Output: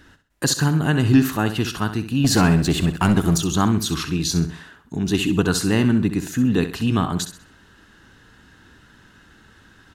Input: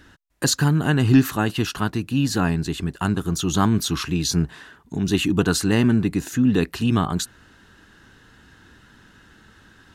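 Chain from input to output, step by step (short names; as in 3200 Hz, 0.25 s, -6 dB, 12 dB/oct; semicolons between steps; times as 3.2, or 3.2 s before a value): 2.24–3.38 sample leveller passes 2; feedback echo 65 ms, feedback 34%, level -11 dB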